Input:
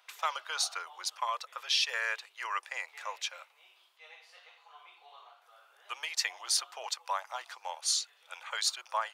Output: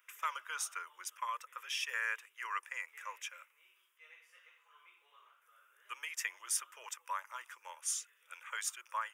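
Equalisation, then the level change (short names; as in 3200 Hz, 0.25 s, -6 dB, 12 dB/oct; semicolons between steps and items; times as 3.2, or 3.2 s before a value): high shelf 7100 Hz +7 dB; dynamic EQ 930 Hz, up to +6 dB, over -48 dBFS, Q 2.4; fixed phaser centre 1800 Hz, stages 4; -3.5 dB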